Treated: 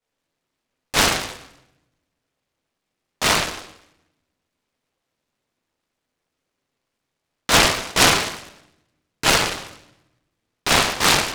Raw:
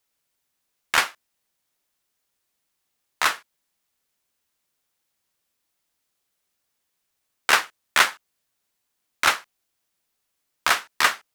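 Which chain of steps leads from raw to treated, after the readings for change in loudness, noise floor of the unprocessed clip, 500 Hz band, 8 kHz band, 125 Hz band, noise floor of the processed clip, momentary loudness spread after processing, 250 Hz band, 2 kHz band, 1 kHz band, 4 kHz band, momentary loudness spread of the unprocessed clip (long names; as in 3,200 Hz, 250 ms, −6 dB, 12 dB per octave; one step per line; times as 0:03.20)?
+4.5 dB, −77 dBFS, +11.5 dB, +9.0 dB, can't be measured, −80 dBFS, 17 LU, +18.0 dB, +1.5 dB, +3.5 dB, +7.5 dB, 10 LU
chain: low-pass filter 2,000 Hz 12 dB per octave
low-shelf EQ 86 Hz −8.5 dB
notch filter 900 Hz
rectangular room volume 300 cubic metres, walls mixed, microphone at 4.5 metres
short delay modulated by noise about 1,400 Hz, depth 0.21 ms
level −4 dB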